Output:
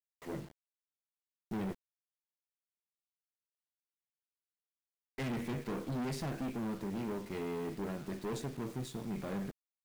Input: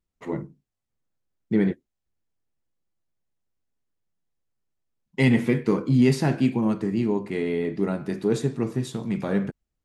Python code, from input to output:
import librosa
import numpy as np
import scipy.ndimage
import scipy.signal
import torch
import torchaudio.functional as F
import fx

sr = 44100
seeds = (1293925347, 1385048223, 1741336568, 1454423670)

y = fx.tube_stage(x, sr, drive_db=28.0, bias=0.65)
y = fx.quant_dither(y, sr, seeds[0], bits=8, dither='none')
y = F.gain(torch.from_numpy(y), -6.5).numpy()